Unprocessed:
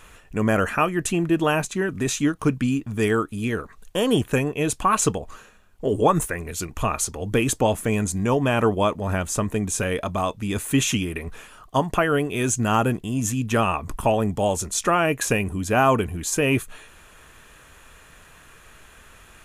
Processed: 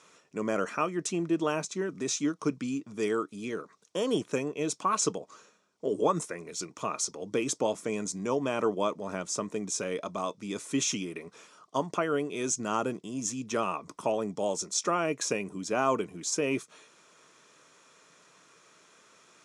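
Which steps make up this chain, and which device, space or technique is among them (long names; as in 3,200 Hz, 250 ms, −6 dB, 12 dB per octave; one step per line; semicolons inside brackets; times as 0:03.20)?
television speaker (loudspeaker in its box 180–8,200 Hz, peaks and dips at 230 Hz −6 dB, 780 Hz −6 dB, 1,700 Hz −9 dB, 2,800 Hz −7 dB, 5,500 Hz +8 dB)
level −6 dB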